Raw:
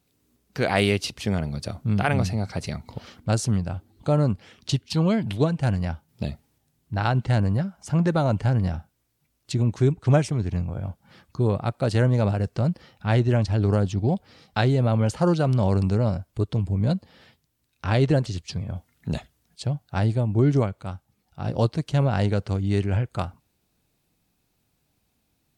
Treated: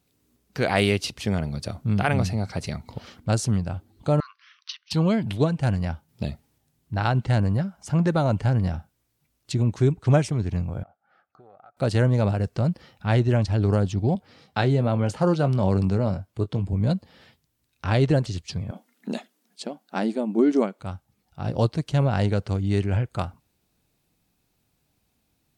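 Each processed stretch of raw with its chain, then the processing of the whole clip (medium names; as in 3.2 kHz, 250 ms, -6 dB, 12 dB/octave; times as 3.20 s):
4.20–4.91 s: brick-wall FIR band-pass 1–6.3 kHz + tilt EQ -2 dB/octave
10.83–11.77 s: two resonant band-passes 1 kHz, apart 0.82 oct + compression, threshold -47 dBFS
14.15–16.73 s: high-pass 93 Hz + treble shelf 4.2 kHz -4.5 dB + doubling 21 ms -12.5 dB
18.71–20.80 s: brick-wall FIR high-pass 190 Hz + bass shelf 300 Hz +7.5 dB
whole clip: none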